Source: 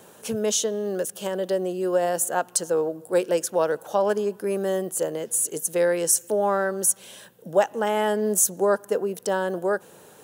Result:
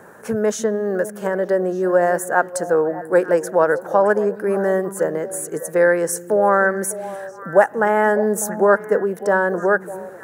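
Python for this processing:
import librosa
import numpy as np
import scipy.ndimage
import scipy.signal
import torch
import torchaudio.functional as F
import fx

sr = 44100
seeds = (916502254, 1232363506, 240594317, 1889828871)

y = fx.high_shelf_res(x, sr, hz=2300.0, db=-10.0, q=3.0)
y = fx.echo_stepped(y, sr, ms=300, hz=230.0, octaves=1.4, feedback_pct=70, wet_db=-9.0)
y = y * 10.0 ** (5.5 / 20.0)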